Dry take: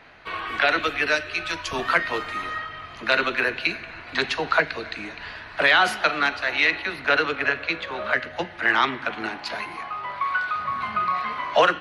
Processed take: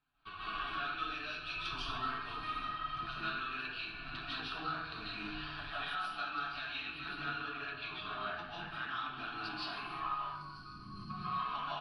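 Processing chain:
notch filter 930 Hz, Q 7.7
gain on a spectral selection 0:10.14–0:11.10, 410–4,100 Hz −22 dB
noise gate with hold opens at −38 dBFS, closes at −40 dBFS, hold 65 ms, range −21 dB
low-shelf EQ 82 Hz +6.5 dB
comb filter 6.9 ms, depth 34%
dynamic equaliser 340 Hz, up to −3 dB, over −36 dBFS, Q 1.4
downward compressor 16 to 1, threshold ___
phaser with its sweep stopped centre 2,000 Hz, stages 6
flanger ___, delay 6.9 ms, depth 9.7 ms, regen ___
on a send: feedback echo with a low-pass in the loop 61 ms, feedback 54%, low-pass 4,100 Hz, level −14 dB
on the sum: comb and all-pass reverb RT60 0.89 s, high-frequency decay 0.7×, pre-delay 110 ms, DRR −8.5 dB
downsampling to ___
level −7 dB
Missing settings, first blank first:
−30 dBFS, 0.52 Hz, +59%, 22,050 Hz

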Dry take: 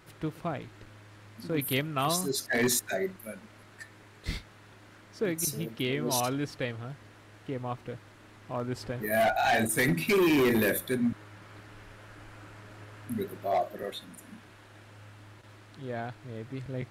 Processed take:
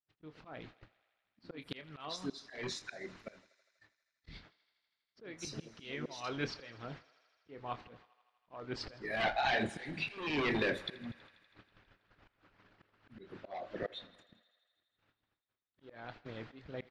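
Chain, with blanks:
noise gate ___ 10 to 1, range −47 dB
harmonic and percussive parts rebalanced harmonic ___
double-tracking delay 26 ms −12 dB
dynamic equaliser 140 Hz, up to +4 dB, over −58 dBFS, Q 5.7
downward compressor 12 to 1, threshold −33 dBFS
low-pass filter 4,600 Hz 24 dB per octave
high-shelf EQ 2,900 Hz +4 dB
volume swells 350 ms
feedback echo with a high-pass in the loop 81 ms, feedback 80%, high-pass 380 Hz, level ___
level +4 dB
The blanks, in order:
−44 dBFS, −15 dB, −20 dB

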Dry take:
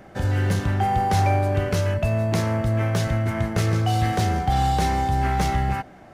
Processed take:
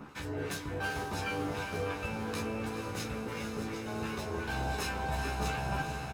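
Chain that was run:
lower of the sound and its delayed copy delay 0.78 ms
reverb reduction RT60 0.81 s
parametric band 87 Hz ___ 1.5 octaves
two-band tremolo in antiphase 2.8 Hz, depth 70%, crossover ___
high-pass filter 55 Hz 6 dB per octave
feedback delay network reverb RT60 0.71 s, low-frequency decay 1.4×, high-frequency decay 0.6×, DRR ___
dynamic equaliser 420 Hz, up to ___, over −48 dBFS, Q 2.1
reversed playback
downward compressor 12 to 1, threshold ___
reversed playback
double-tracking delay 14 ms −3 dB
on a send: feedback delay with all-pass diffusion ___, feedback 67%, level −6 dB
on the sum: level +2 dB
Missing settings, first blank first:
−5 dB, 1,200 Hz, 7.5 dB, +7 dB, −36 dBFS, 454 ms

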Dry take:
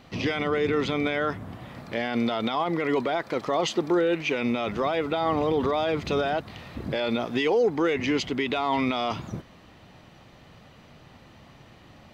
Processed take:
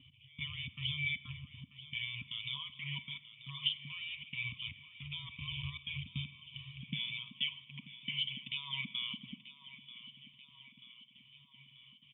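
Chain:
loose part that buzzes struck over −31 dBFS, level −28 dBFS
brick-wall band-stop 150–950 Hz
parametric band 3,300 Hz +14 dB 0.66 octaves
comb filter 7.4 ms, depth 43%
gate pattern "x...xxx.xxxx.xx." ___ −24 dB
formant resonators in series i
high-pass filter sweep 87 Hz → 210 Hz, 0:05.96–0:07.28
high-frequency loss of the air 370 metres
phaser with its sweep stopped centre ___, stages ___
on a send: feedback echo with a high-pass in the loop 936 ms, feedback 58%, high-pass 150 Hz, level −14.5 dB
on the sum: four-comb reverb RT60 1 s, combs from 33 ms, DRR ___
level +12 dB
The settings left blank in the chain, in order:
156 BPM, 400 Hz, 6, 16.5 dB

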